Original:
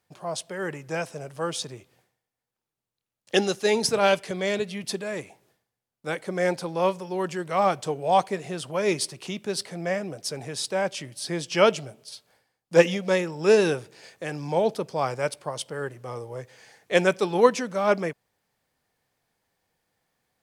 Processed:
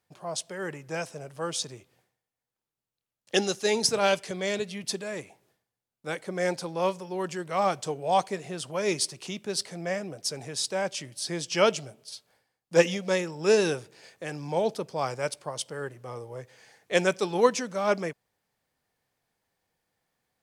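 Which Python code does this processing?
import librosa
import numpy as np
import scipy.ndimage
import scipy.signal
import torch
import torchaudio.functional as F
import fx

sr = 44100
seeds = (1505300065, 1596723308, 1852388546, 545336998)

y = fx.dynamic_eq(x, sr, hz=6400.0, q=0.89, threshold_db=-46.0, ratio=4.0, max_db=6)
y = y * librosa.db_to_amplitude(-3.5)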